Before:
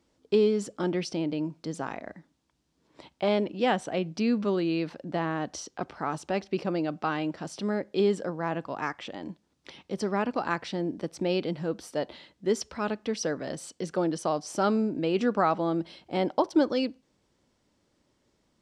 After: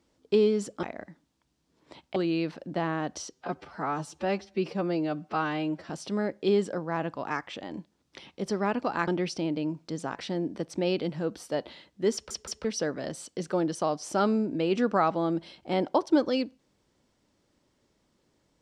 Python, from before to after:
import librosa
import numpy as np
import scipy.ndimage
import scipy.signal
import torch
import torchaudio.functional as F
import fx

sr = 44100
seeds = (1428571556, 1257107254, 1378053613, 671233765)

y = fx.edit(x, sr, fx.move(start_s=0.83, length_s=1.08, to_s=10.59),
    fx.cut(start_s=3.24, length_s=1.3),
    fx.stretch_span(start_s=5.68, length_s=1.73, factor=1.5),
    fx.stutter_over(start_s=12.57, slice_s=0.17, count=3), tone=tone)